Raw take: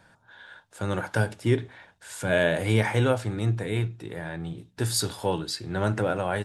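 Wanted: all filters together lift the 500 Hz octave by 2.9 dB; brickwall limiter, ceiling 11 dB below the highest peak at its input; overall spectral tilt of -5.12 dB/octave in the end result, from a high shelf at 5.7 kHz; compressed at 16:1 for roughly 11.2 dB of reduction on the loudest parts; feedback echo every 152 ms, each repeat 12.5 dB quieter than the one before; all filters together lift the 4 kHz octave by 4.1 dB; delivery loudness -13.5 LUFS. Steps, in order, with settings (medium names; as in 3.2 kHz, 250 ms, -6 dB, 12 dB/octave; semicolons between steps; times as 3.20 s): peaking EQ 500 Hz +3.5 dB; peaking EQ 4 kHz +8 dB; treble shelf 5.7 kHz -7.5 dB; compression 16:1, threshold -26 dBFS; peak limiter -24 dBFS; feedback delay 152 ms, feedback 24%, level -12.5 dB; trim +21.5 dB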